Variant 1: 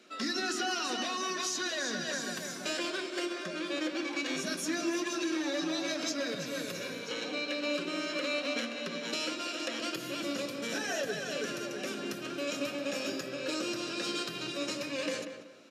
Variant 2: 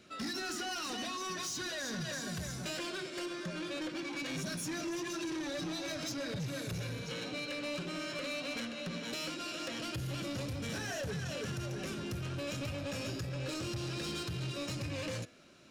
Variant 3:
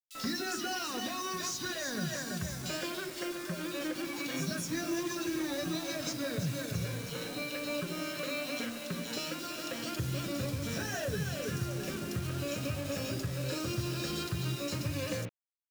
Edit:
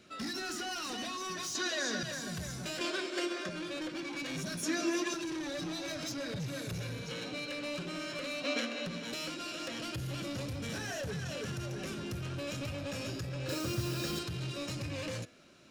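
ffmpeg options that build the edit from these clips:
-filter_complex "[0:a]asplit=4[a][b][c][d];[1:a]asplit=6[e][f][g][h][i][j];[e]atrim=end=1.552[k];[a]atrim=start=1.548:end=2.032[l];[f]atrim=start=2.028:end=2.812[m];[b]atrim=start=2.808:end=3.492[n];[g]atrim=start=3.488:end=4.632[o];[c]atrim=start=4.628:end=5.142[p];[h]atrim=start=5.138:end=8.442[q];[d]atrim=start=8.438:end=8.862[r];[i]atrim=start=8.858:end=13.492[s];[2:a]atrim=start=13.488:end=14.192[t];[j]atrim=start=14.188[u];[k][l]acrossfade=d=0.004:c1=hsin:c2=hsin[v];[v][m]acrossfade=d=0.004:c1=hsin:c2=hsin[w];[w][n]acrossfade=d=0.004:c1=hsin:c2=hsin[x];[x][o]acrossfade=d=0.004:c1=hsin:c2=hsin[y];[y][p]acrossfade=d=0.004:c1=hsin:c2=hsin[z];[z][q]acrossfade=d=0.004:c1=hsin:c2=hsin[aa];[aa][r]acrossfade=d=0.004:c1=hsin:c2=hsin[ab];[ab][s]acrossfade=d=0.004:c1=hsin:c2=hsin[ac];[ac][t]acrossfade=d=0.004:c1=hsin:c2=hsin[ad];[ad][u]acrossfade=d=0.004:c1=hsin:c2=hsin"

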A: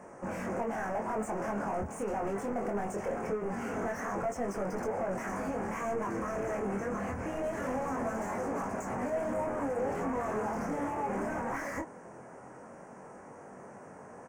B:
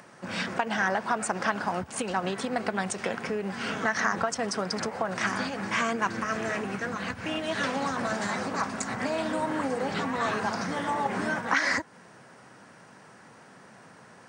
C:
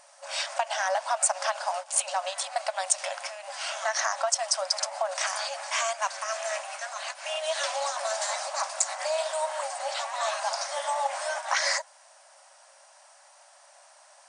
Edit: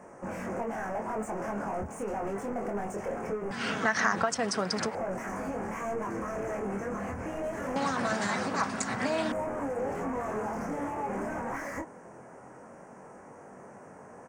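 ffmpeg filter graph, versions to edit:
-filter_complex "[1:a]asplit=2[a][b];[0:a]asplit=3[c][d][e];[c]atrim=end=3.512[f];[a]atrim=start=3.508:end=4.952[g];[d]atrim=start=4.948:end=7.762[h];[b]atrim=start=7.758:end=9.322[i];[e]atrim=start=9.318[j];[f][g]acrossfade=d=0.004:c1=hsin:c2=hsin[k];[k][h]acrossfade=d=0.004:c1=hsin:c2=hsin[l];[l][i]acrossfade=d=0.004:c1=hsin:c2=hsin[m];[m][j]acrossfade=d=0.004:c1=hsin:c2=hsin"

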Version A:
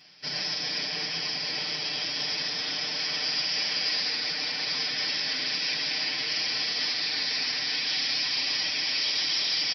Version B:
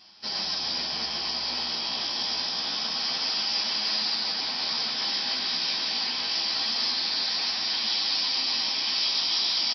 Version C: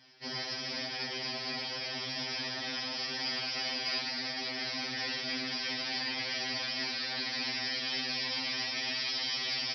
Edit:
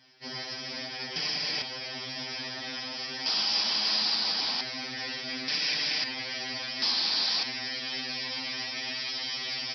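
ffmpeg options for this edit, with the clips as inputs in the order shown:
-filter_complex "[0:a]asplit=2[a][b];[1:a]asplit=2[c][d];[2:a]asplit=5[e][f][g][h][i];[e]atrim=end=1.162[j];[a]atrim=start=1.158:end=1.622[k];[f]atrim=start=1.618:end=3.262[l];[c]atrim=start=3.258:end=4.612[m];[g]atrim=start=4.608:end=5.482[n];[b]atrim=start=5.478:end=6.042[o];[h]atrim=start=6.038:end=6.822[p];[d]atrim=start=6.818:end=7.432[q];[i]atrim=start=7.428[r];[j][k]acrossfade=d=0.004:c1=hsin:c2=hsin[s];[s][l]acrossfade=d=0.004:c1=hsin:c2=hsin[t];[t][m]acrossfade=d=0.004:c1=hsin:c2=hsin[u];[u][n]acrossfade=d=0.004:c1=hsin:c2=hsin[v];[v][o]acrossfade=d=0.004:c1=hsin:c2=hsin[w];[w][p]acrossfade=d=0.004:c1=hsin:c2=hsin[x];[x][q]acrossfade=d=0.004:c1=hsin:c2=hsin[y];[y][r]acrossfade=d=0.004:c1=hsin:c2=hsin"

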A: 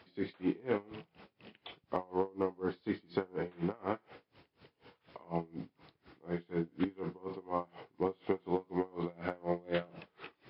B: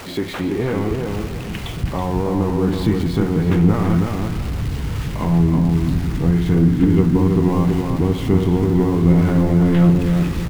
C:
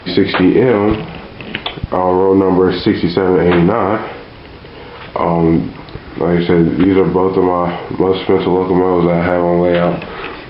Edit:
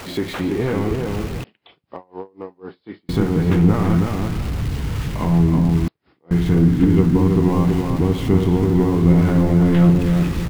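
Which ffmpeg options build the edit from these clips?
-filter_complex "[0:a]asplit=2[a][b];[1:a]asplit=3[c][d][e];[c]atrim=end=1.442[f];[a]atrim=start=1.438:end=3.092[g];[d]atrim=start=3.088:end=5.882[h];[b]atrim=start=5.878:end=6.312[i];[e]atrim=start=6.308[j];[f][g]acrossfade=d=0.004:c1=hsin:c2=hsin[k];[k][h]acrossfade=d=0.004:c1=hsin:c2=hsin[l];[l][i]acrossfade=d=0.004:c1=hsin:c2=hsin[m];[m][j]acrossfade=d=0.004:c1=hsin:c2=hsin"

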